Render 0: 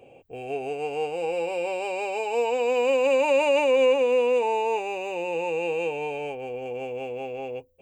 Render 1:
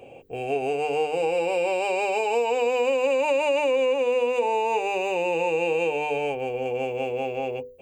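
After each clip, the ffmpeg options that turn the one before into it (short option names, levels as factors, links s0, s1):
-af "bandreject=f=50:t=h:w=6,bandreject=f=100:t=h:w=6,bandreject=f=150:t=h:w=6,bandreject=f=200:t=h:w=6,bandreject=f=250:t=h:w=6,bandreject=f=300:t=h:w=6,bandreject=f=350:t=h:w=6,bandreject=f=400:t=h:w=6,bandreject=f=450:t=h:w=6,bandreject=f=500:t=h:w=6,acompressor=threshold=0.0501:ratio=6,volume=2"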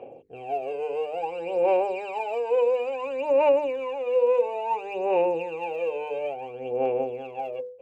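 -af "bandpass=f=650:t=q:w=0.59:csg=0,aphaser=in_gain=1:out_gain=1:delay=2:decay=0.69:speed=0.58:type=sinusoidal,volume=0.562"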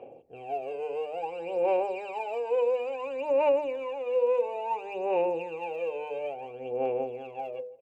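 -filter_complex "[0:a]asplit=2[s0][s1];[s1]adelay=163,lowpass=f=1300:p=1,volume=0.0891,asplit=2[s2][s3];[s3]adelay=163,lowpass=f=1300:p=1,volume=0.35,asplit=2[s4][s5];[s5]adelay=163,lowpass=f=1300:p=1,volume=0.35[s6];[s0][s2][s4][s6]amix=inputs=4:normalize=0,volume=0.631"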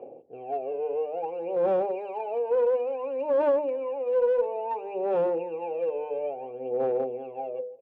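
-af "aeval=exprs='clip(val(0),-1,0.0473)':c=same,bandpass=f=380:t=q:w=0.72:csg=0,volume=1.68"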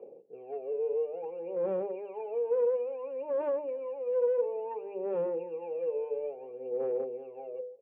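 -af "highpass=150,equalizer=f=190:t=q:w=4:g=7,equalizer=f=270:t=q:w=4:g=-5,equalizer=f=440:t=q:w=4:g=8,equalizer=f=730:t=q:w=4:g=-9,equalizer=f=1500:t=q:w=4:g=-4,lowpass=f=2600:w=0.5412,lowpass=f=2600:w=1.3066,volume=0.422"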